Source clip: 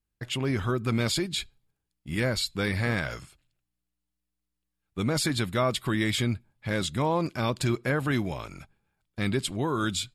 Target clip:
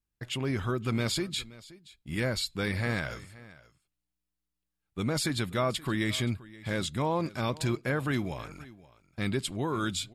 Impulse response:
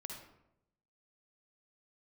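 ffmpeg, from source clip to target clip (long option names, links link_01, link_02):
-af "aecho=1:1:525:0.1,volume=-3dB"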